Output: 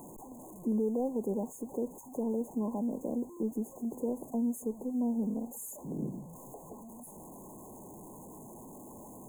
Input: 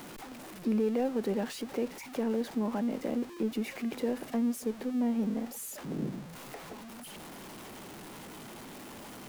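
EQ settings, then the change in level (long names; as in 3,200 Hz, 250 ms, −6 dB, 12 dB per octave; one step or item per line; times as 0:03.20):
dynamic equaliser 1,500 Hz, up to −4 dB, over −49 dBFS, Q 0.76
linear-phase brick-wall band-stop 1,100–6,300 Hz
−1.5 dB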